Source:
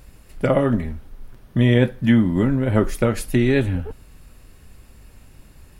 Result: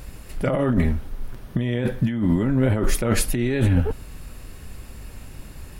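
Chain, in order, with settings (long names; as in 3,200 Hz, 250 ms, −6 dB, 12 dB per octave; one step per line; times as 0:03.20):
compressor whose output falls as the input rises −23 dBFS, ratio −1
level +3 dB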